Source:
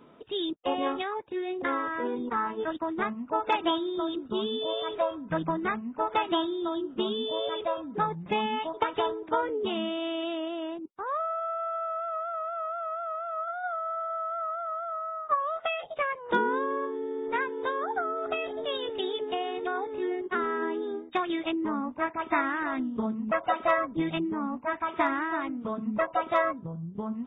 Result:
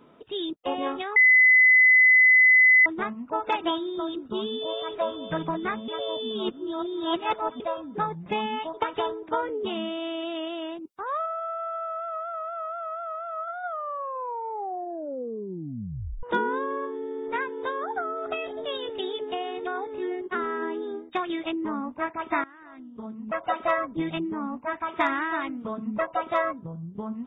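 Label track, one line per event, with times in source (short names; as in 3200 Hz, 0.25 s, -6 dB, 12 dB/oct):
1.160000	2.860000	bleep 2020 Hz -13 dBFS
4.470000	5.010000	echo throw 0.54 s, feedback 50%, level -8.5 dB
5.880000	7.600000	reverse
10.350000	11.260000	high shelf 2300 Hz +8 dB
13.620000	13.620000	tape stop 2.61 s
22.440000	23.510000	fade in quadratic, from -20 dB
25.000000	25.620000	high shelf 2200 Hz +9.5 dB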